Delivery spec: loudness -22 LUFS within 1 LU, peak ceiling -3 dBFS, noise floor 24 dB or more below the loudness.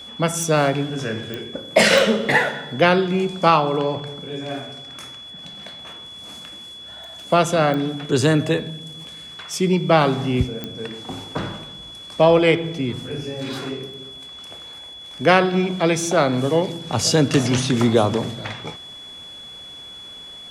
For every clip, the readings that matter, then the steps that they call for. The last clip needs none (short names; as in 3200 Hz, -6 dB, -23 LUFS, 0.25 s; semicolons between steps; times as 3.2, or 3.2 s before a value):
clicks 5; steady tone 3400 Hz; tone level -36 dBFS; loudness -20.0 LUFS; peak -2.5 dBFS; loudness target -22.0 LUFS
-> de-click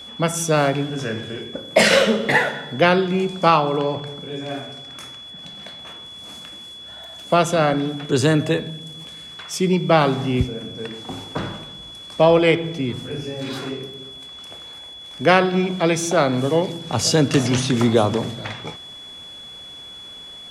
clicks 0; steady tone 3400 Hz; tone level -36 dBFS
-> notch 3400 Hz, Q 30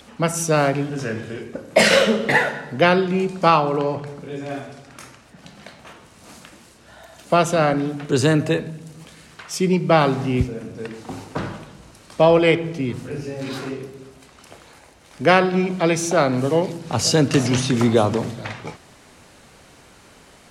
steady tone none; loudness -19.5 LUFS; peak -2.5 dBFS; loudness target -22.0 LUFS
-> gain -2.5 dB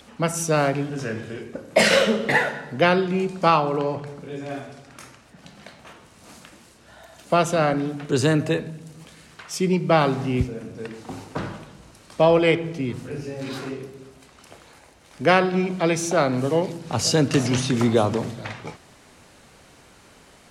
loudness -22.0 LUFS; peak -5.0 dBFS; noise floor -52 dBFS